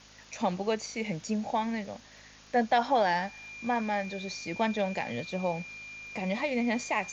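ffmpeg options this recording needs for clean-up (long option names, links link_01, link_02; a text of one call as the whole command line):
ffmpeg -i in.wav -af "adeclick=threshold=4,bandreject=frequency=52.4:width_type=h:width=4,bandreject=frequency=104.8:width_type=h:width=4,bandreject=frequency=157.2:width_type=h:width=4,bandreject=frequency=209.6:width_type=h:width=4,bandreject=frequency=262:width_type=h:width=4,bandreject=frequency=2400:width=30,afftdn=noise_reduction=23:noise_floor=-53" out.wav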